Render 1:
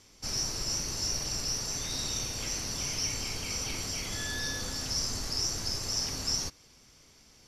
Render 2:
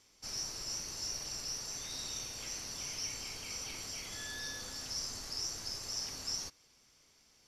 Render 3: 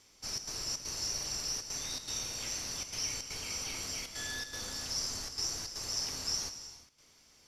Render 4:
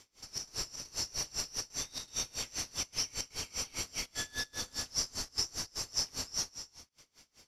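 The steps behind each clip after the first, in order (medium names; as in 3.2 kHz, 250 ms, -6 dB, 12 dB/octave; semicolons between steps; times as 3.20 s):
bass shelf 340 Hz -7.5 dB; trim -7 dB
trance gate "xxxx.xxx.xxxx" 159 bpm -12 dB; gated-style reverb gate 390 ms flat, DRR 9.5 dB; trim +3.5 dB
logarithmic tremolo 5 Hz, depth 26 dB; trim +5.5 dB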